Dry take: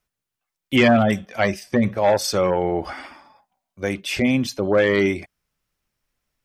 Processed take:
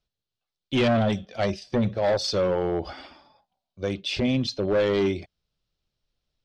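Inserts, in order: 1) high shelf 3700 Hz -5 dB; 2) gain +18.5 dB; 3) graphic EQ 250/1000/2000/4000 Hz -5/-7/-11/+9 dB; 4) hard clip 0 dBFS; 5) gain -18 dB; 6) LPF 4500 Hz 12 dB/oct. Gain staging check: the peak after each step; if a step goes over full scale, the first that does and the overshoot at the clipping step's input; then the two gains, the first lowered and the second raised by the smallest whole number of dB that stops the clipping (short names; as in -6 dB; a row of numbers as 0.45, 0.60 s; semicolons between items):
-7.5, +11.0, +9.5, 0.0, -18.0, -17.0 dBFS; step 2, 9.5 dB; step 2 +8.5 dB, step 5 -8 dB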